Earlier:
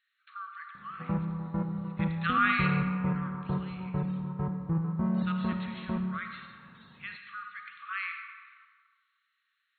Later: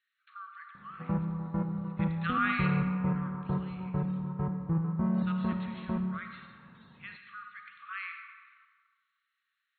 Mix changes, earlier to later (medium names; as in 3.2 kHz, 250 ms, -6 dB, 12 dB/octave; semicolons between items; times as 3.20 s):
speech -3.5 dB; master: add distance through air 72 m